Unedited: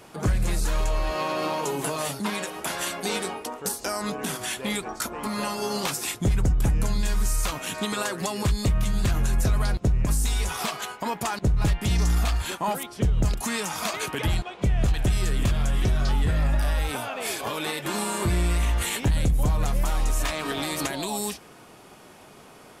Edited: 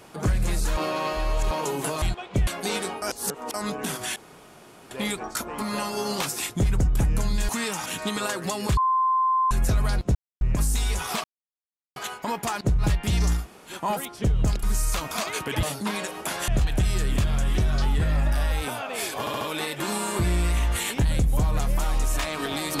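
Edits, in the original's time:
0:00.77–0:01.51: reverse
0:02.02–0:02.87: swap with 0:14.30–0:14.75
0:03.42–0:03.94: reverse
0:04.56: splice in room tone 0.75 s
0:07.14–0:07.62: swap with 0:13.41–0:13.78
0:08.53–0:09.27: beep over 1,040 Hz −18.5 dBFS
0:09.91: splice in silence 0.26 s
0:10.74: splice in silence 0.72 s
0:12.17–0:12.51: fill with room tone, crossfade 0.16 s
0:17.47: stutter 0.07 s, 4 plays

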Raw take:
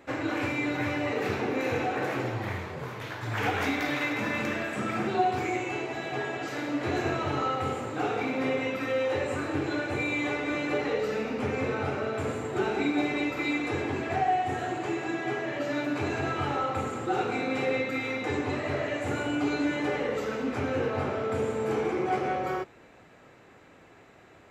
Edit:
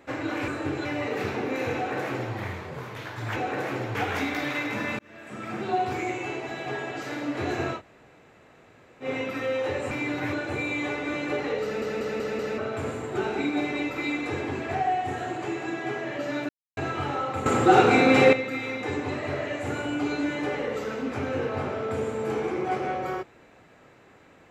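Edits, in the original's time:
0:00.48–0:00.90: swap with 0:09.37–0:09.74
0:01.80–0:02.39: duplicate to 0:03.41
0:04.45–0:05.29: fade in
0:07.23–0:08.51: fill with room tone, crossfade 0.10 s
0:11.04: stutter in place 0.19 s, 5 plays
0:15.90–0:16.18: silence
0:16.87–0:17.74: clip gain +11.5 dB

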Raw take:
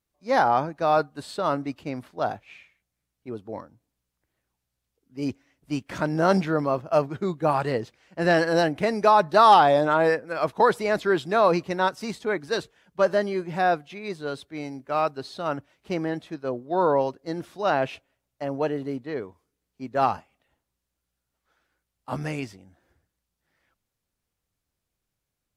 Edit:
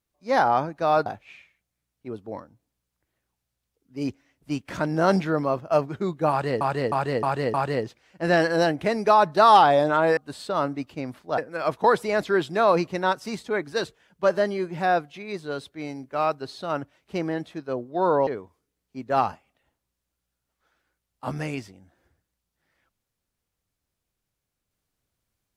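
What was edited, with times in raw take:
0:01.06–0:02.27: move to 0:10.14
0:07.51–0:07.82: repeat, 5 plays
0:17.03–0:19.12: remove

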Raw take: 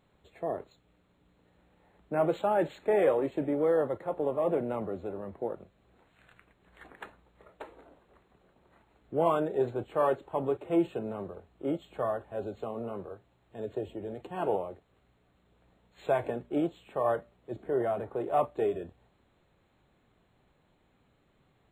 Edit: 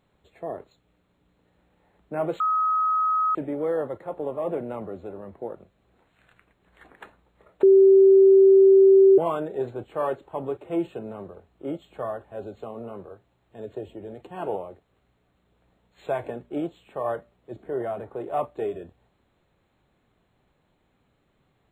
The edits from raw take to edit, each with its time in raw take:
0:02.40–0:03.35: beep over 1,270 Hz −19.5 dBFS
0:07.63–0:09.18: beep over 387 Hz −10.5 dBFS

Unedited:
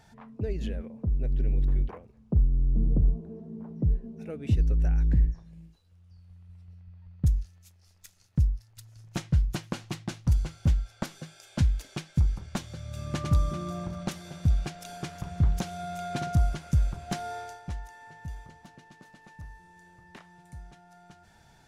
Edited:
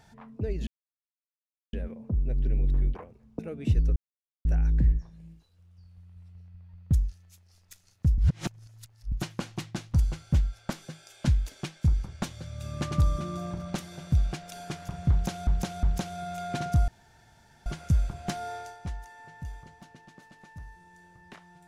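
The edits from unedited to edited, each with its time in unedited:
0:00.67: splice in silence 1.06 s
0:02.33–0:04.21: remove
0:04.78: splice in silence 0.49 s
0:08.51–0:09.45: reverse
0:15.44–0:15.80: repeat, 3 plays
0:16.49: splice in room tone 0.78 s

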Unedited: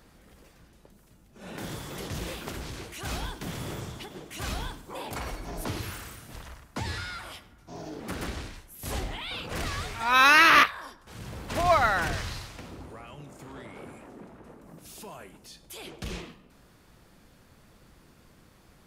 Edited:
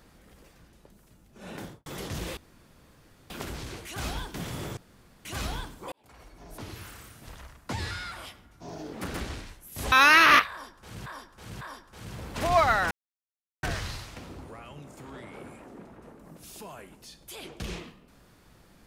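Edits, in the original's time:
0:01.52–0:01.86: fade out and dull
0:02.37: splice in room tone 0.93 s
0:03.84–0:04.32: fill with room tone
0:04.99–0:06.80: fade in linear
0:08.99–0:10.16: remove
0:10.75–0:11.30: repeat, 3 plays
0:12.05: splice in silence 0.72 s

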